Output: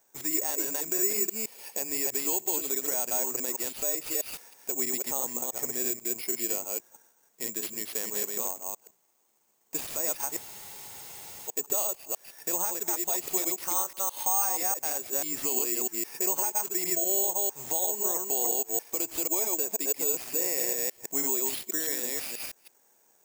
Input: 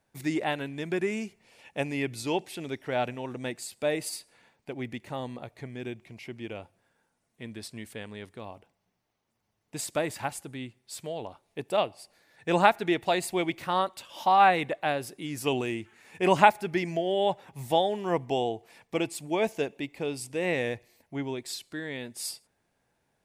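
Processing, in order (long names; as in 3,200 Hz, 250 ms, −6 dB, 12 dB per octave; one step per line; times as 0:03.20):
delay that plays each chunk backwards 162 ms, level −3 dB
high-pass filter 290 Hz 12 dB per octave
downward compressor 4 to 1, threshold −36 dBFS, peak gain reduction 19.5 dB
brickwall limiter −29 dBFS, peak gain reduction 8 dB
graphic EQ with 15 bands 400 Hz +5 dB, 1,000 Hz +5 dB, 10,000 Hz −12 dB
bad sample-rate conversion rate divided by 6×, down none, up zero stuff
frozen spectrum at 0:10.40, 1.08 s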